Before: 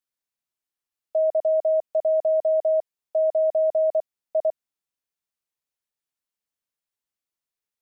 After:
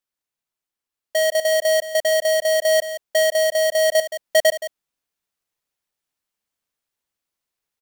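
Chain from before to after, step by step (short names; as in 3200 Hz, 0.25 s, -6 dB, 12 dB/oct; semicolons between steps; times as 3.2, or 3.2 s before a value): half-waves squared off; echo 0.172 s -13 dB; vocal rider 0.5 s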